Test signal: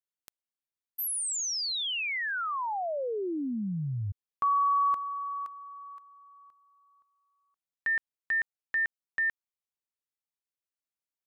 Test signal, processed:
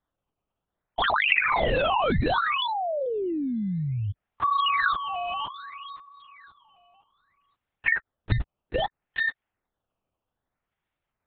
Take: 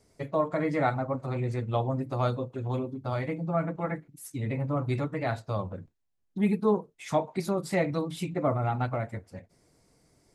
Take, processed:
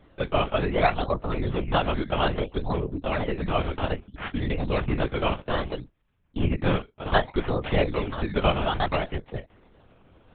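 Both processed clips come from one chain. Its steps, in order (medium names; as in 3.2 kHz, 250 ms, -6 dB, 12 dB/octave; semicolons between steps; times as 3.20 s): harmonic-percussive split percussive +7 dB; in parallel at +2.5 dB: compression, threshold -32 dBFS; on the sum: decimation with a swept rate 16×, swing 100% 0.62 Hz; LPC vocoder at 8 kHz whisper; trim -2 dB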